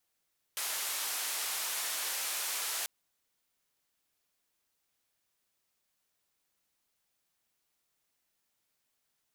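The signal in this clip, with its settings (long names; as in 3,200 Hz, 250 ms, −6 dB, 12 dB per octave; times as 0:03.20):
band-limited noise 660–14,000 Hz, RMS −35.5 dBFS 2.29 s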